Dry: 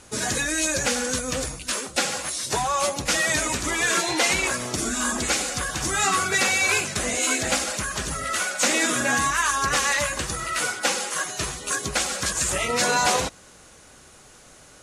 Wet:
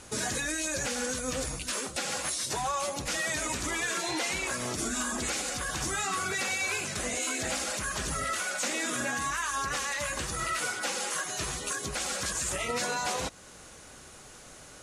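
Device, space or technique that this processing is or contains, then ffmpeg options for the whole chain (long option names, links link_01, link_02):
stacked limiters: -af "alimiter=limit=-15.5dB:level=0:latency=1:release=429,alimiter=limit=-22dB:level=0:latency=1:release=123"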